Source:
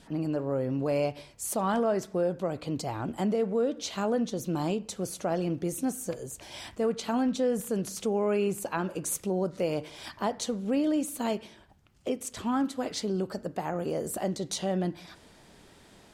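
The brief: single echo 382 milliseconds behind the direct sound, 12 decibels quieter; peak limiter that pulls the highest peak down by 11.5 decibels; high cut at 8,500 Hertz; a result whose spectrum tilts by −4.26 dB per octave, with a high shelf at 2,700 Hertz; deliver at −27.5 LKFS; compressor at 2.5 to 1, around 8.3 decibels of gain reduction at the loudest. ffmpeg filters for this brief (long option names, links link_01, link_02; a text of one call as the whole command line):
ffmpeg -i in.wav -af "lowpass=8500,highshelf=frequency=2700:gain=3.5,acompressor=threshold=-36dB:ratio=2.5,alimiter=level_in=9dB:limit=-24dB:level=0:latency=1,volume=-9dB,aecho=1:1:382:0.251,volume=14dB" out.wav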